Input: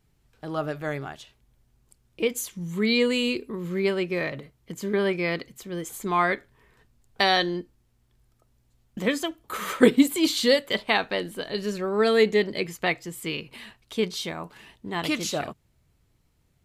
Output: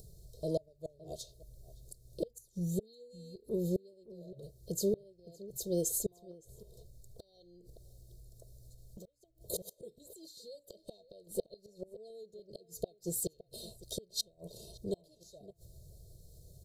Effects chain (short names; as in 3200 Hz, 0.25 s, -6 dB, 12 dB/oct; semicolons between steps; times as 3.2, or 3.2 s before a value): flipped gate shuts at -21 dBFS, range -35 dB; high shelf 10000 Hz +5 dB; comb 1.9 ms, depth 98%; dynamic EQ 110 Hz, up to -3 dB, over -50 dBFS, Q 0.93; Chebyshev band-stop 680–4000 Hz, order 4; upward compressor, threshold -45 dBFS; outdoor echo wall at 97 m, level -17 dB; 6.31–9.37 compressor 16:1, threshold -49 dBFS, peak gain reduction 22 dB; AC-3 96 kbps 44100 Hz